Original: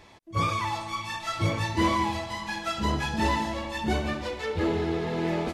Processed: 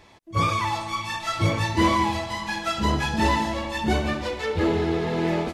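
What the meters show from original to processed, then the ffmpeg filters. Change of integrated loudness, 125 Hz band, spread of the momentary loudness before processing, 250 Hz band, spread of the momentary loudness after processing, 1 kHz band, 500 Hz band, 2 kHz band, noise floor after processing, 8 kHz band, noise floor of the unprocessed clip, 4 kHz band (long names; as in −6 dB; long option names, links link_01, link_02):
+4.0 dB, +4.0 dB, 7 LU, +4.0 dB, 7 LU, +4.0 dB, +4.0 dB, +4.0 dB, −45 dBFS, +4.0 dB, −45 dBFS, +4.0 dB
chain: -af "dynaudnorm=framelen=180:gausssize=3:maxgain=4dB"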